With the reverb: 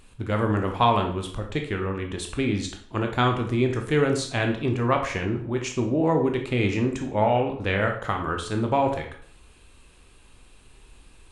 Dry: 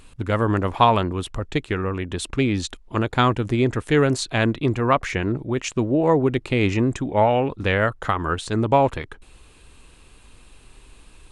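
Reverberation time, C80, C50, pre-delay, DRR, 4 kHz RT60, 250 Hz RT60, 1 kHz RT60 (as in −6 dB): 0.55 s, 12.0 dB, 8.0 dB, 14 ms, 3.0 dB, 0.45 s, 0.55 s, 0.55 s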